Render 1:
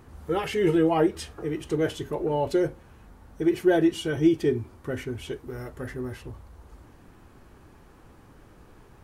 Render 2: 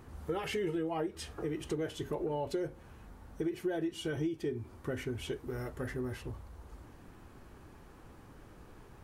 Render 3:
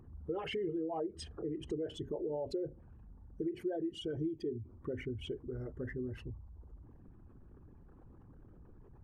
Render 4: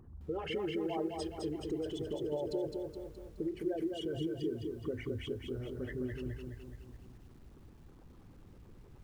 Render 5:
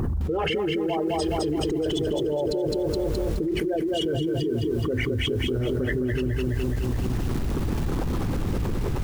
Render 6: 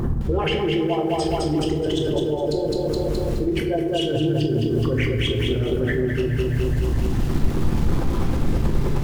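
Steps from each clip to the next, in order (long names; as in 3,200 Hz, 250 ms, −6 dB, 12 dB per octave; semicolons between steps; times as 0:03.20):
downward compressor 6 to 1, threshold −30 dBFS, peak gain reduction 14.5 dB; level −2 dB
spectral envelope exaggerated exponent 2; level −2.5 dB
on a send at −22.5 dB: convolution reverb RT60 0.65 s, pre-delay 5 ms; on the sum: feedback echo at a low word length 210 ms, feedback 55%, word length 11 bits, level −4 dB
envelope flattener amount 100%; level +5.5 dB
rectangular room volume 230 cubic metres, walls mixed, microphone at 0.83 metres; highs frequency-modulated by the lows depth 0.15 ms; level +1 dB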